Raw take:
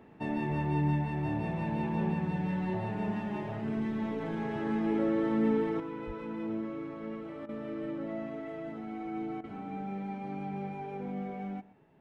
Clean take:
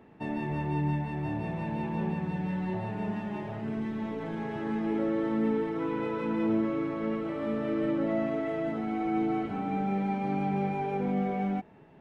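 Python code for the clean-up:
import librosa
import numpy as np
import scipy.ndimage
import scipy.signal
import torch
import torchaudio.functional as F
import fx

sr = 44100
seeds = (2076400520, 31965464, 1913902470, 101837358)

y = fx.highpass(x, sr, hz=140.0, slope=24, at=(6.06, 6.18), fade=0.02)
y = fx.fix_interpolate(y, sr, at_s=(7.46, 9.41), length_ms=28.0)
y = fx.fix_echo_inverse(y, sr, delay_ms=122, level_db=-20.0)
y = fx.fix_level(y, sr, at_s=5.8, step_db=8.5)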